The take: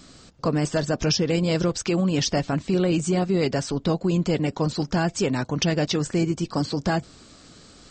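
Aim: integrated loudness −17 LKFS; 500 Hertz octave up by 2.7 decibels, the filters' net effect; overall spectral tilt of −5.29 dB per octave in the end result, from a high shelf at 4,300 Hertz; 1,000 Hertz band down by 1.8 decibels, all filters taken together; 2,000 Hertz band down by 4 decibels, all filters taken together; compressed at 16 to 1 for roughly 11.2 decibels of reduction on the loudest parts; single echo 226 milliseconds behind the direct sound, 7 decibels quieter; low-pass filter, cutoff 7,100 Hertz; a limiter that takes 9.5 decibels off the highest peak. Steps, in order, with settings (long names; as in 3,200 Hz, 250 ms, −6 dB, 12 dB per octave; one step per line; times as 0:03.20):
low-pass filter 7,100 Hz
parametric band 500 Hz +4.5 dB
parametric band 1,000 Hz −4 dB
parametric band 2,000 Hz −5 dB
high-shelf EQ 4,300 Hz +3 dB
downward compressor 16 to 1, threshold −28 dBFS
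brickwall limiter −28 dBFS
single-tap delay 226 ms −7 dB
level +19 dB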